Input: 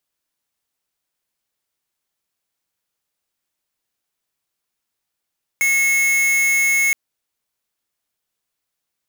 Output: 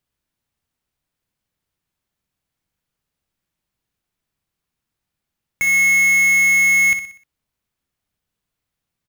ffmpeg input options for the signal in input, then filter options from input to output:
-f lavfi -i "aevalsrc='0.15*(2*lt(mod(2180*t,1),0.5)-1)':duration=1.32:sample_rate=44100"
-filter_complex "[0:a]bass=frequency=250:gain=13,treble=frequency=4000:gain=-5,asplit=2[link_01][link_02];[link_02]aecho=0:1:61|122|183|244|305:0.316|0.142|0.064|0.0288|0.013[link_03];[link_01][link_03]amix=inputs=2:normalize=0"

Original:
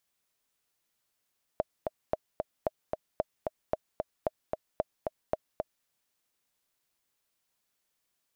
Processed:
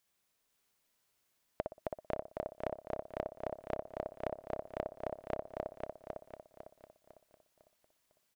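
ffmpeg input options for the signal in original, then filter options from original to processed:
-f lavfi -i "aevalsrc='pow(10,(-14-3.5*gte(mod(t,2*60/225),60/225))/20)*sin(2*PI*627*mod(t,60/225))*exp(-6.91*mod(t,60/225)/0.03)':duration=4.26:sample_rate=44100"
-filter_complex "[0:a]asplit=2[link_01][link_02];[link_02]adelay=60,lowpass=frequency=1900:poles=1,volume=-3dB,asplit=2[link_03][link_04];[link_04]adelay=60,lowpass=frequency=1900:poles=1,volume=0.23,asplit=2[link_05][link_06];[link_06]adelay=60,lowpass=frequency=1900:poles=1,volume=0.23[link_07];[link_03][link_05][link_07]amix=inputs=3:normalize=0[link_08];[link_01][link_08]amix=inputs=2:normalize=0,acompressor=threshold=-34dB:ratio=4,asplit=2[link_09][link_10];[link_10]aecho=0:1:502|1004|1506|2008|2510:0.631|0.246|0.096|0.0374|0.0146[link_11];[link_09][link_11]amix=inputs=2:normalize=0"

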